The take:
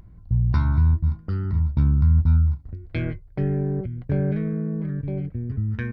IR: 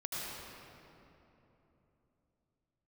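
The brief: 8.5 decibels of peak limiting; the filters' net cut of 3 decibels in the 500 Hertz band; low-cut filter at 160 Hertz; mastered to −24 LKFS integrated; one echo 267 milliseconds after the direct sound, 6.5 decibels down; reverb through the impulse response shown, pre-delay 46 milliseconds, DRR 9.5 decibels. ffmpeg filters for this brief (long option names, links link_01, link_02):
-filter_complex "[0:a]highpass=160,equalizer=frequency=500:width_type=o:gain=-4,alimiter=level_in=0.5dB:limit=-24dB:level=0:latency=1,volume=-0.5dB,aecho=1:1:267:0.473,asplit=2[link_01][link_02];[1:a]atrim=start_sample=2205,adelay=46[link_03];[link_02][link_03]afir=irnorm=-1:irlink=0,volume=-12.5dB[link_04];[link_01][link_04]amix=inputs=2:normalize=0,volume=8.5dB"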